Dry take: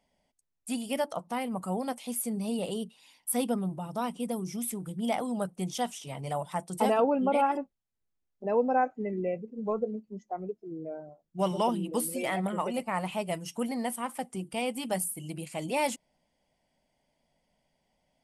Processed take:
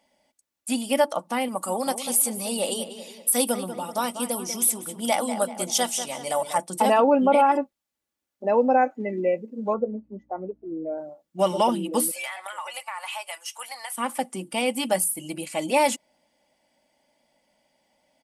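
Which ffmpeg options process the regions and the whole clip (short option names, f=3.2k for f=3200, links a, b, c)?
-filter_complex "[0:a]asettb=1/sr,asplit=3[a][b][c];[a]atrim=end=1.484[d];[b]atrim=start=1.48:end=6.58,asetpts=PTS-STARTPTS,afade=t=in:d=0.004:c=qsin,afade=t=out:st=5.096:d=0.004:c=qsin,bass=f=250:g=-8,treble=f=4k:g=8,asplit=2[e][f];[f]adelay=192,lowpass=f=3.2k:p=1,volume=-10dB,asplit=2[g][h];[h]adelay=192,lowpass=f=3.2k:p=1,volume=0.49,asplit=2[i][j];[j]adelay=192,lowpass=f=3.2k:p=1,volume=0.49,asplit=2[k][l];[l]adelay=192,lowpass=f=3.2k:p=1,volume=0.49,asplit=2[m][n];[n]adelay=192,lowpass=f=3.2k:p=1,volume=0.49[o];[e][g][i][k][m][o]amix=inputs=6:normalize=0,atrim=end_sample=224910[p];[c]atrim=start=6.576[q];[d][p]acrossfade=d=0.004:c1=hsin:c2=qsin[r];[r][q]acrossfade=d=0.004:c1=qsin:c2=hsin,asettb=1/sr,asplit=3[s][t][u];[s]atrim=end=9.744[v];[t]atrim=start=9.74:end=10.98,asetpts=PTS-STARTPTS,afade=t=in:d=0.004:c=qsin,afade=t=out:st=1.236:d=0.004:c=qsin,lowpass=1.3k,aeval=exprs='val(0)+0.000708*(sin(2*PI*60*n/s)+sin(2*PI*2*60*n/s)/2+sin(2*PI*3*60*n/s)/3+sin(2*PI*4*60*n/s)/4+sin(2*PI*5*60*n/s)/5)':c=same[w];[u]atrim=start=10.976[x];[v][w]acrossfade=d=0.004:c1=hsin:c2=qsin[y];[y][x]acrossfade=d=0.004:c1=qsin:c2=hsin,asettb=1/sr,asplit=3[z][aa][ab];[z]atrim=end=12.114[ac];[aa]atrim=start=12.11:end=13.98,asetpts=PTS-STARTPTS,afade=t=in:d=0.004:c=qsin,afade=t=out:st=1.866:d=0.004:c=qsin,highpass=f=880:w=0.5412,highpass=f=880:w=1.3066,acompressor=threshold=-37dB:ratio=10:attack=3.2:release=140:knee=1:detection=peak[ad];[ab]atrim=start=13.976[ae];[ac][ad]acrossfade=d=0.004:c1=hsin:c2=qsin[af];[af][ae]acrossfade=d=0.004:c1=qsin:c2=hsin,highpass=f=310:p=1,aecho=1:1:3.5:0.43,alimiter=level_in=16.5dB:limit=-1dB:release=50:level=0:latency=1,volume=-8.5dB"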